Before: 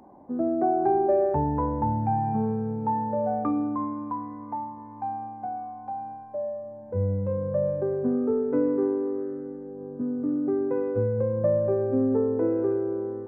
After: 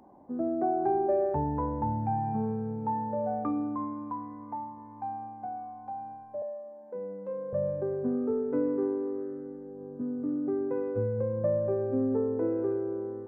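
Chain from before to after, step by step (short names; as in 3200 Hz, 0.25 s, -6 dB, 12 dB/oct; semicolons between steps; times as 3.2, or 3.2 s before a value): 6.42–7.53 Bessel high-pass 330 Hz, order 8; gain -4.5 dB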